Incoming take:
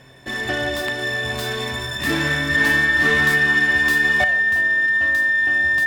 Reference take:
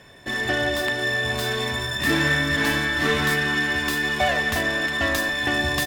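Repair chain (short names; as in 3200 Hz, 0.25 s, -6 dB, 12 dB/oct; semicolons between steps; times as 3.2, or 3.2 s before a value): de-hum 131 Hz, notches 7; notch 1800 Hz, Q 30; gain correction +10 dB, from 4.24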